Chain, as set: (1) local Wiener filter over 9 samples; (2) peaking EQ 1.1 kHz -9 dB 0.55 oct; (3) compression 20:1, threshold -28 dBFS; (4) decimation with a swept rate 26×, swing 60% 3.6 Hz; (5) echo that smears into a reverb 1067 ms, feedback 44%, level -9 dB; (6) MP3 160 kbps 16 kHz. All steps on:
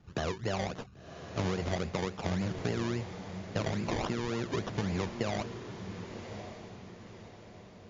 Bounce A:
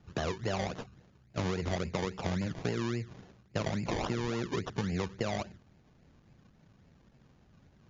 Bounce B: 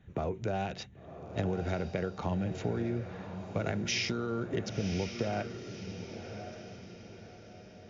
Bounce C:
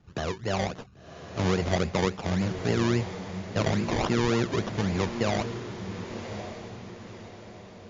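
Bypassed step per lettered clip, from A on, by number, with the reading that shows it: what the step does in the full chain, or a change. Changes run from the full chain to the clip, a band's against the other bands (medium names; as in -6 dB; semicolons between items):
5, momentary loudness spread change -7 LU; 4, 4 kHz band +2.0 dB; 3, mean gain reduction 4.0 dB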